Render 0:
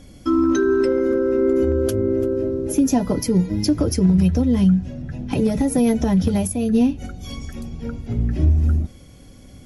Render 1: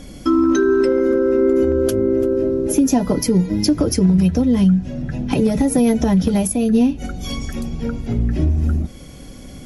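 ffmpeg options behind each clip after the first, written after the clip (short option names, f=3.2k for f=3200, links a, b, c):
-af "equalizer=f=91:w=3.7:g=-12,acompressor=threshold=-31dB:ratio=1.5,volume=8.5dB"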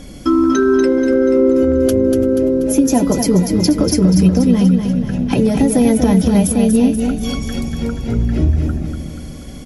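-af "aecho=1:1:241|482|723|964|1205|1446:0.501|0.256|0.13|0.0665|0.0339|0.0173,volume=2dB"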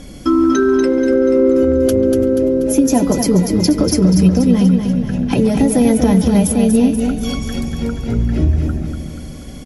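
-filter_complex "[0:a]aresample=32000,aresample=44100,asplit=2[a][b];[b]adelay=140,highpass=300,lowpass=3.4k,asoftclip=type=hard:threshold=-10dB,volume=-14dB[c];[a][c]amix=inputs=2:normalize=0"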